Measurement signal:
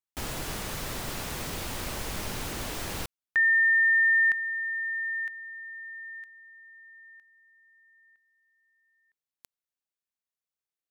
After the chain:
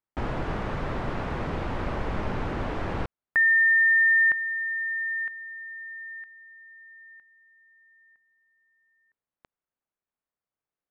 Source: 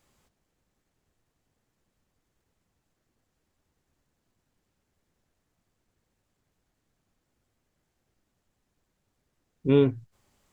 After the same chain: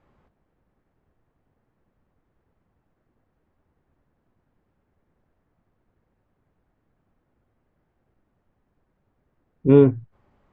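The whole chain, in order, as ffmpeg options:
-af "lowpass=1.5k,volume=7dB"

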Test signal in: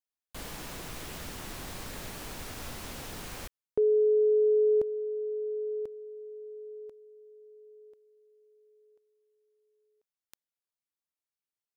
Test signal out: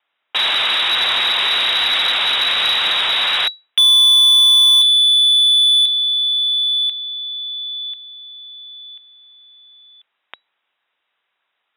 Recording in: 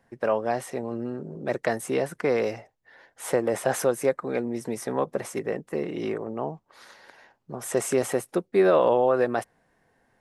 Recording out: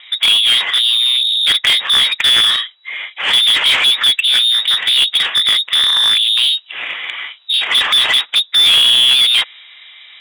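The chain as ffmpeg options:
-filter_complex "[0:a]asoftclip=type=hard:threshold=-14.5dB,lowpass=f=3.3k:t=q:w=0.5098,lowpass=f=3.3k:t=q:w=0.6013,lowpass=f=3.3k:t=q:w=0.9,lowpass=f=3.3k:t=q:w=2.563,afreqshift=-3900,asplit=2[a][b];[b]highpass=f=720:p=1,volume=28dB,asoftclip=type=tanh:threshold=-10dB[c];[a][c]amix=inputs=2:normalize=0,lowpass=f=2.6k:p=1,volume=-6dB,volume=9dB"

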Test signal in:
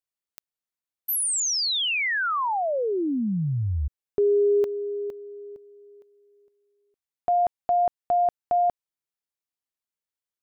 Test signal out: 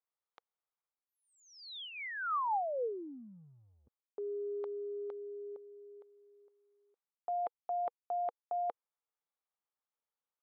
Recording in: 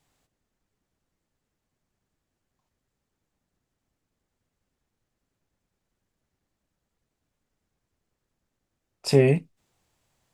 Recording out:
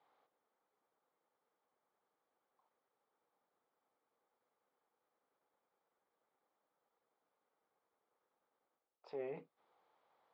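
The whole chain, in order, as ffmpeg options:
-af "areverse,acompressor=threshold=-36dB:ratio=5:attack=5.4:release=257:knee=6:detection=rms,areverse,highpass=460,equalizer=f=480:t=q:w=4:g=7,equalizer=f=830:t=q:w=4:g=7,equalizer=f=1.2k:t=q:w=4:g=6,equalizer=f=1.8k:t=q:w=4:g=-4,equalizer=f=2.7k:t=q:w=4:g=-10,lowpass=f=3.2k:w=0.5412,lowpass=f=3.2k:w=1.3066,volume=-2dB"

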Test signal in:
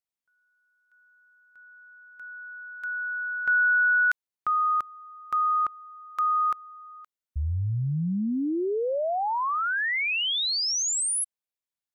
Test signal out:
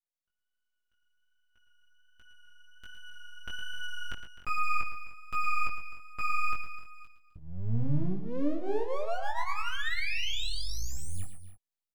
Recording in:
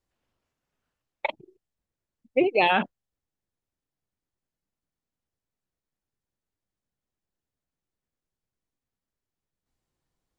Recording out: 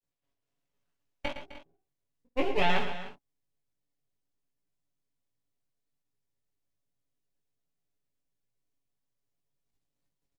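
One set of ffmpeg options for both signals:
-filter_complex "[0:a]aecho=1:1:7.1:0.91,aeval=exprs='max(val(0),0)':c=same,acrossover=split=3800[a][b];[b]acompressor=threshold=-44dB:ratio=4:attack=1:release=60[c];[a][c]amix=inputs=2:normalize=0,flanger=delay=17:depth=4.6:speed=1.3,bandreject=f=840:w=26,aecho=1:1:56|112|127|258|302:0.126|0.299|0.15|0.168|0.141,dynaudnorm=f=180:g=5:m=4dB,equalizer=f=1.4k:t=o:w=0.84:g=-4.5,volume=-4.5dB"

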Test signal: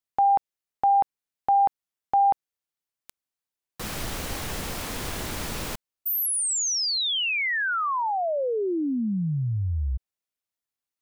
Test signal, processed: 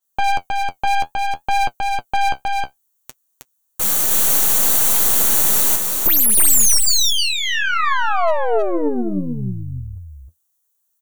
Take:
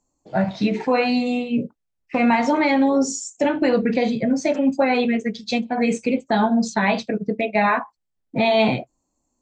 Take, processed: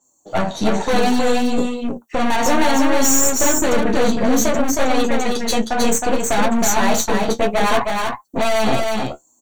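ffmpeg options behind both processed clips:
-filter_complex "[0:a]highpass=f=380:p=1,equalizer=f=2.3k:w=3.5:g=-14,aexciter=amount=3.2:drive=5.6:freq=6k,apsyclip=11.5dB,aeval=exprs='(tanh(5.62*val(0)+0.7)-tanh(0.7))/5.62':c=same,flanger=delay=7.2:depth=7.8:regen=43:speed=0.63:shape=triangular,aeval=exprs='0.188*(abs(mod(val(0)/0.188+3,4)-2)-1)':c=same,asuperstop=centerf=5100:order=20:qfactor=8,asplit=2[a][b];[b]aecho=0:1:315:0.668[c];[a][c]amix=inputs=2:normalize=0,adynamicequalizer=threshold=0.0141:dfrequency=7200:dqfactor=0.7:tfrequency=7200:tqfactor=0.7:attack=5:release=100:ratio=0.375:range=1.5:mode=boostabove:tftype=highshelf,volume=4.5dB"

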